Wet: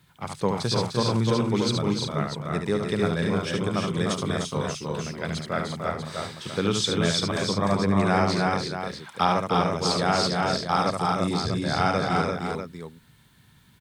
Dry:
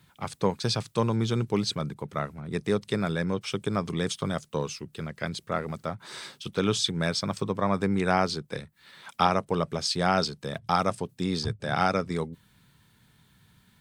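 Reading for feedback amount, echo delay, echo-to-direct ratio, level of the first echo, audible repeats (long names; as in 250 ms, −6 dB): repeats not evenly spaced, 72 ms, 1.0 dB, −5.0 dB, 5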